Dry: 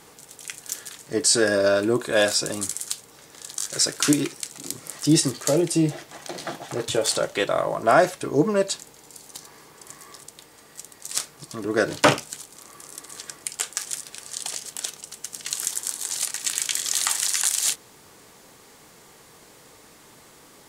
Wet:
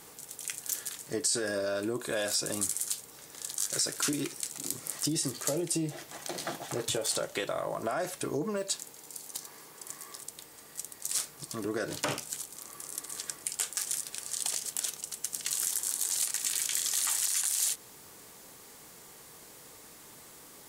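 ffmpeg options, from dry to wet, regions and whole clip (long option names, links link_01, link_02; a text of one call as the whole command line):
ffmpeg -i in.wav -filter_complex "[0:a]asettb=1/sr,asplit=3[link_01][link_02][link_03];[link_01]atrim=end=8.574[link_04];[link_02]atrim=start=8.57:end=10.28,asetpts=PTS-STARTPTS,afade=type=in:duration=0.004:curve=qsin,afade=type=out:start_time=1.706:duration=0.004:curve=qsin,acrusher=bits=9:mode=log:mix=0:aa=0.000001,lowshelf=frequency=82:gain=-11.5[link_05];[link_03]atrim=start=10.276[link_06];[link_04][link_05]acrossfade=duration=0.004:curve1=hsin:curve2=qsin[link_07];[link_07][link_06]acrossfade=duration=0.004:curve1=qsin:curve2=hsin,alimiter=limit=-13dB:level=0:latency=1:release=11,acompressor=threshold=-25dB:ratio=6,highshelf=frequency=8900:gain=11,volume=-4dB" out.wav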